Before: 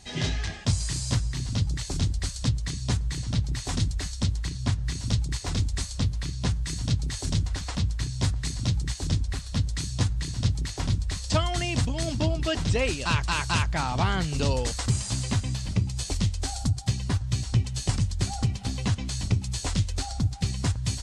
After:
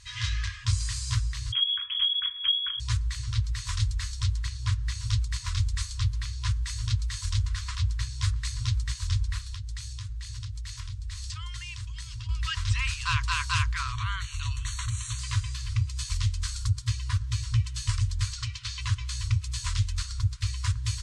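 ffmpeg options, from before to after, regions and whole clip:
-filter_complex "[0:a]asettb=1/sr,asplit=3[s0][s1][s2];[s0]atrim=end=1.524[s3];[s1]atrim=start=1.52:end=2.8,asetpts=PTS-STARTPTS,afade=t=in:d=0.004:c=qsin,afade=t=out:st=1.276:d=0.004:c=qsin,equalizer=f=500:t=o:w=0.8:g=-5,lowpass=f=2900:t=q:w=0.5098,lowpass=f=2900:t=q:w=0.6013,lowpass=f=2900:t=q:w=0.9,lowpass=f=2900:t=q:w=2.563,afreqshift=-3400[s4];[s2]atrim=start=2.796[s5];[s3][s4]acrossfade=d=0.004:c1=hsin:c2=qsin[s6];[s6][s5]acrossfade=d=0.004:c1=qsin:c2=hsin,asettb=1/sr,asplit=3[s7][s8][s9];[s7]atrim=end=9.444[s10];[s8]atrim=start=9.44:end=12.29,asetpts=PTS-STARTPTS,afade=t=in:d=0.004:c=qsin,afade=t=out:st=2.846:d=0.004:c=qsin,equalizer=f=670:w=0.52:g=-6,acompressor=threshold=0.0282:ratio=10:attack=3.2:release=140:knee=1:detection=peak[s11];[s9]atrim=start=12.286[s12];[s10][s11]acrossfade=d=0.004:c1=hsin:c2=qsin[s13];[s13][s12]acrossfade=d=0.004:c1=qsin:c2=hsin,asettb=1/sr,asplit=3[s14][s15][s16];[s14]atrim=end=13.924[s17];[s15]atrim=start=13.92:end=15.19,asetpts=PTS-STARTPTS,afade=t=in:d=0.004:c=qsin,afade=t=out:st=1.266:d=0.004:c=qsin,acompressor=threshold=0.0501:ratio=2:attack=3.2:release=140:knee=1:detection=peak,asuperstop=centerf=5000:order=8:qfactor=4.5[s18];[s16]atrim=start=15.186[s19];[s17][s18]acrossfade=d=0.004:c1=hsin:c2=qsin[s20];[s20][s19]acrossfade=d=0.004:c1=qsin:c2=hsin,asettb=1/sr,asplit=3[s21][s22][s23];[s21]atrim=end=18.334[s24];[s22]atrim=start=18.33:end=18.81,asetpts=PTS-STARTPTS,afade=t=in:d=0.004:c=qsin,afade=t=out:st=0.476:d=0.004:c=qsin,lowpass=5800,tiltshelf=f=1200:g=-7[s25];[s23]atrim=start=18.806[s26];[s24][s25]acrossfade=d=0.004:c1=hsin:c2=qsin[s27];[s27][s26]acrossfade=d=0.004:c1=qsin:c2=hsin,highshelf=f=7700:g=-5.5,afftfilt=real='re*(1-between(b*sr/4096,120,960))':imag='im*(1-between(b*sr/4096,120,960))':win_size=4096:overlap=0.75"

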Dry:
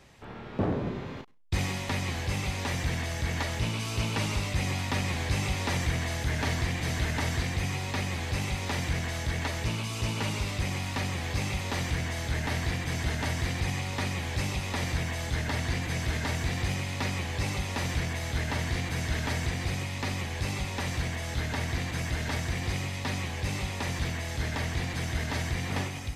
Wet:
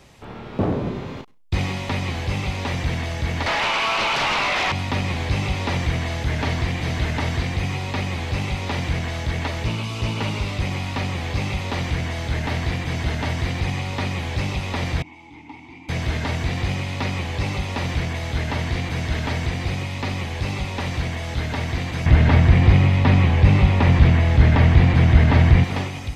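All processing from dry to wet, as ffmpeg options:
-filter_complex "[0:a]asettb=1/sr,asplit=3[s0][s1][s2];[s0]atrim=end=3.464[s3];[s1]atrim=start=3.46:end=4.72,asetpts=PTS-STARTPTS,afade=t=in:d=0.004:c=qsin,afade=t=out:st=1.256:d=0.004:c=qsin,acrossover=split=2700[s4][s5];[s5]acompressor=threshold=0.00224:ratio=4:attack=1:release=60[s6];[s4][s6]amix=inputs=2:normalize=0,highpass=f=730:w=0.5412,highpass=f=730:w=1.3066,aeval=exprs='0.0708*sin(PI/2*5.62*val(0)/0.0708)':c=same[s7];[s2]atrim=start=4.716[s8];[s3][s7]acrossfade=d=0.004:c1=hsin:c2=qsin[s9];[s9][s8]acrossfade=d=0.004:c1=qsin:c2=hsin,asettb=1/sr,asplit=3[s10][s11][s12];[s10]atrim=end=15.024[s13];[s11]atrim=start=15.02:end=15.89,asetpts=PTS-STARTPTS,afade=t=in:d=0.004:c=qsin,afade=t=out:st=0.866:d=0.004:c=qsin,asplit=3[s14][s15][s16];[s14]bandpass=f=300:t=q:w=8,volume=1[s17];[s15]bandpass=f=870:t=q:w=8,volume=0.501[s18];[s16]bandpass=f=2240:t=q:w=8,volume=0.355[s19];[s17][s18][s19]amix=inputs=3:normalize=0,equalizer=f=250:w=0.82:g=-4,bandreject=f=4200:w=23[s20];[s12]atrim=start=15.886[s21];[s13][s20]acrossfade=d=0.004:c1=hsin:c2=qsin[s22];[s22][s21]acrossfade=d=0.004:c1=qsin:c2=hsin,asettb=1/sr,asplit=3[s23][s24][s25];[s23]atrim=end=22.064[s26];[s24]atrim=start=22.06:end=25.64,asetpts=PTS-STARTPTS,afade=t=in:d=0.004:c=qsin,afade=t=out:st=3.576:d=0.004:c=qsin,bass=f=250:g=6,treble=f=4000:g=-15,acontrast=75[s27];[s25]atrim=start=25.636[s28];[s26][s27]acrossfade=d=0.004:c1=hsin:c2=qsin[s29];[s29][s28]acrossfade=d=0.004:c1=qsin:c2=hsin,acrossover=split=4700[s30][s31];[s31]acompressor=threshold=0.00158:ratio=4:attack=1:release=60[s32];[s30][s32]amix=inputs=2:normalize=0,equalizer=f=1700:w=3.1:g=-4,volume=2.11"

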